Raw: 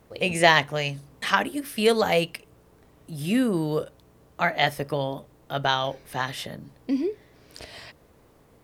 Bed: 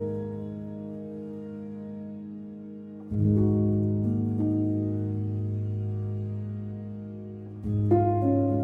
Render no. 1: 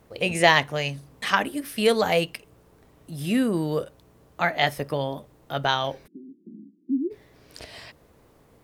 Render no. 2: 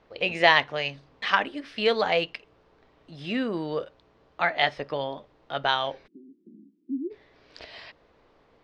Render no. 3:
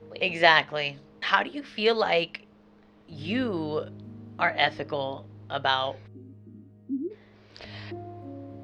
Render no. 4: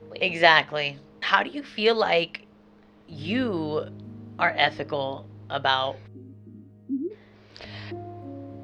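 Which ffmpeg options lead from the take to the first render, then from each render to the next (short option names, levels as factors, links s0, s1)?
-filter_complex "[0:a]asplit=3[s0][s1][s2];[s0]afade=t=out:st=6.06:d=0.02[s3];[s1]asuperpass=centerf=260:order=12:qfactor=1.4,afade=t=in:st=6.06:d=0.02,afade=t=out:st=7.1:d=0.02[s4];[s2]afade=t=in:st=7.1:d=0.02[s5];[s3][s4][s5]amix=inputs=3:normalize=0"
-af "lowpass=f=4600:w=0.5412,lowpass=f=4600:w=1.3066,equalizer=f=110:t=o:w=2.8:g=-11"
-filter_complex "[1:a]volume=0.133[s0];[0:a][s0]amix=inputs=2:normalize=0"
-af "volume=1.26,alimiter=limit=0.891:level=0:latency=1"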